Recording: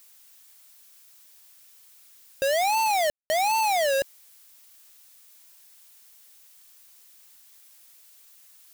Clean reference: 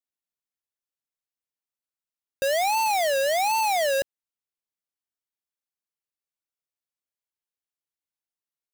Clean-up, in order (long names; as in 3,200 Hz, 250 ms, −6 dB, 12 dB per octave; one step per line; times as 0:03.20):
ambience match 0:03.10–0:03.30
noise reduction from a noise print 30 dB